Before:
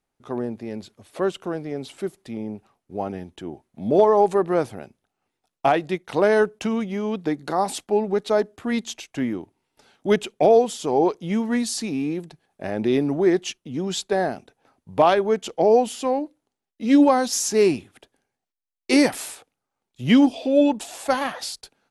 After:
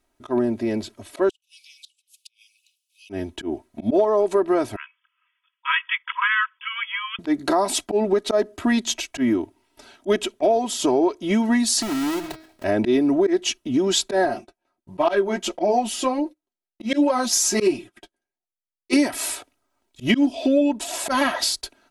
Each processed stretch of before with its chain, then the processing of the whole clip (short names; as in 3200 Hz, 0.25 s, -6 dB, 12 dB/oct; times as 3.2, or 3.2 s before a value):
1.29–3.1 steep high-pass 2500 Hz 96 dB/oct + flipped gate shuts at -37 dBFS, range -31 dB
4.76–7.19 brick-wall FIR band-pass 950–3500 Hz + tilt +4 dB/oct
11.82–12.64 half-waves squared off + de-hum 159.2 Hz, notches 36 + compressor 5:1, threshold -34 dBFS
14.25–18.93 gate -51 dBFS, range -19 dB + comb 5.6 ms, depth 52% + flange 1.4 Hz, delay 5.9 ms, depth 6.6 ms, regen -26%
whole clip: comb 3.1 ms, depth 80%; auto swell 0.109 s; compressor 6:1, threshold -23 dBFS; gain +7 dB